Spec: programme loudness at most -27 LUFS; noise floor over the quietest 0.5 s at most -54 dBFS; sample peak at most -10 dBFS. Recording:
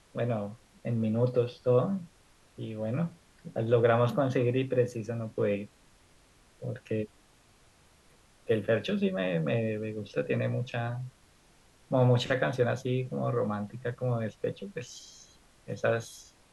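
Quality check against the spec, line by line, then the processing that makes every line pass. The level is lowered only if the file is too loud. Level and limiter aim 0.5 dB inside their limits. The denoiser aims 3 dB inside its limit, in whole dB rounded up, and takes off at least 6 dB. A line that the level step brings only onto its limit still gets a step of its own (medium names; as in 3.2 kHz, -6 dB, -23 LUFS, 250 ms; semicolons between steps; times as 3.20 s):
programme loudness -30.5 LUFS: pass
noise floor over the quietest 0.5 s -61 dBFS: pass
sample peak -13.0 dBFS: pass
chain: none needed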